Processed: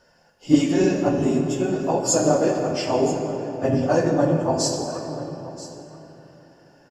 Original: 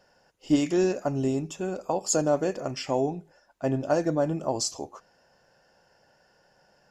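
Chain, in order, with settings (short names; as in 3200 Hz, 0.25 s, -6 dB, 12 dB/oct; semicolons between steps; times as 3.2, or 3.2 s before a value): phase scrambler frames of 50 ms; echo 0.983 s -16 dB; reverb RT60 3.4 s, pre-delay 9 ms, DRR 3 dB; gain +4 dB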